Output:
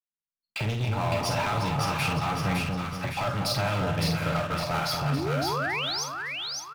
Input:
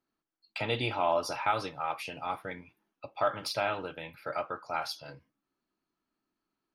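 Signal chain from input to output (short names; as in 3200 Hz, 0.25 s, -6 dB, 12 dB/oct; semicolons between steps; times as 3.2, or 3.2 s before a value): opening faded in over 1.33 s; resonant low shelf 240 Hz +11.5 dB, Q 1.5; compressor, threshold -35 dBFS, peak gain reduction 12 dB; sample leveller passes 5; painted sound rise, 5.12–6.04, 240–6500 Hz -27 dBFS; doubler 48 ms -7.5 dB; split-band echo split 1100 Hz, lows 0.237 s, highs 0.56 s, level -3 dB; gain -4.5 dB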